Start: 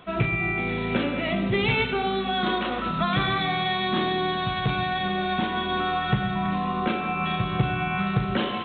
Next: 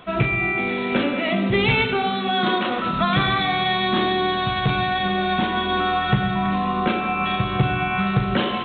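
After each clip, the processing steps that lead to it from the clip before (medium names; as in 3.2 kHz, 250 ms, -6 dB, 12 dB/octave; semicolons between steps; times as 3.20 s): de-hum 54.89 Hz, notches 8; trim +4.5 dB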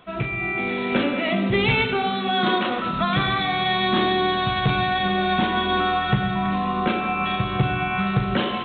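level rider gain up to 9 dB; trim -6.5 dB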